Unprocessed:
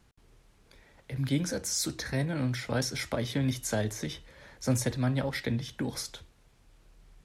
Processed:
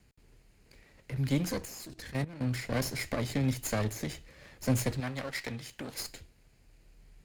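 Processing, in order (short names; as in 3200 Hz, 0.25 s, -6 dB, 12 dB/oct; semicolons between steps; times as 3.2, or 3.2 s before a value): minimum comb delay 0.44 ms; 1.65–2.47 level quantiser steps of 15 dB; 5–6 low shelf 450 Hz -11.5 dB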